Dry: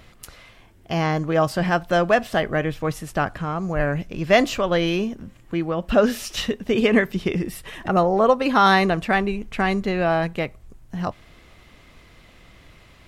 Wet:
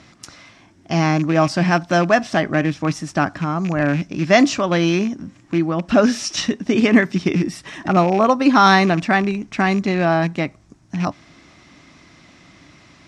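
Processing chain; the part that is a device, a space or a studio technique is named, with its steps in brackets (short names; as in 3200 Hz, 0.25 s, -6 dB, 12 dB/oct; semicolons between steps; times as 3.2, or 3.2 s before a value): car door speaker with a rattle (rattling part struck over -26 dBFS, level -25 dBFS; speaker cabinet 110–8300 Hz, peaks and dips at 170 Hz +3 dB, 290 Hz +8 dB, 470 Hz -9 dB, 3000 Hz -4 dB, 5600 Hz +8 dB); gain +3.5 dB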